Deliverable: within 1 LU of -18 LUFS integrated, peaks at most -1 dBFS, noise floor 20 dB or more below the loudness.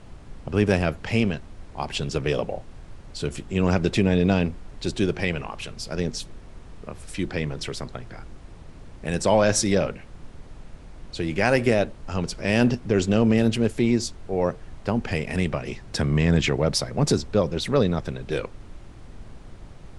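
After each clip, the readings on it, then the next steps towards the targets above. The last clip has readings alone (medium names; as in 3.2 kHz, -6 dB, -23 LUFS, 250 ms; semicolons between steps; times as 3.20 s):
noise floor -44 dBFS; noise floor target -45 dBFS; loudness -24.5 LUFS; peak level -5.0 dBFS; loudness target -18.0 LUFS
-> noise print and reduce 6 dB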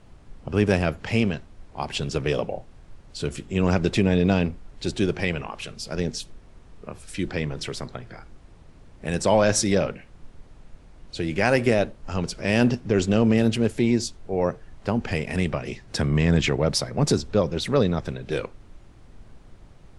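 noise floor -50 dBFS; loudness -24.5 LUFS; peak level -5.0 dBFS; loudness target -18.0 LUFS
-> trim +6.5 dB; peak limiter -1 dBFS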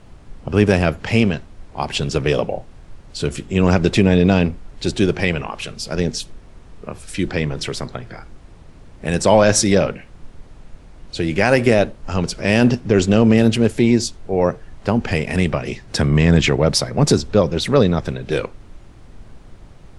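loudness -18.0 LUFS; peak level -1.0 dBFS; noise floor -43 dBFS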